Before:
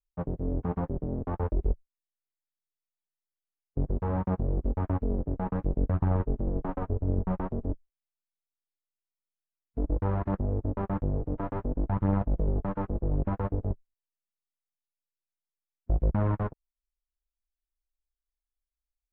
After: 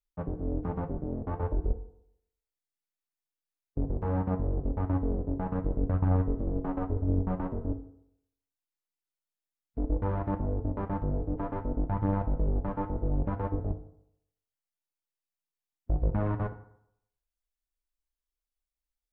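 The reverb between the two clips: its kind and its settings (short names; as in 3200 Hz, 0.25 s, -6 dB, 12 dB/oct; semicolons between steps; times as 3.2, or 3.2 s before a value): FDN reverb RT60 0.74 s, low-frequency decay 0.9×, high-frequency decay 0.6×, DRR 7 dB; gain -2 dB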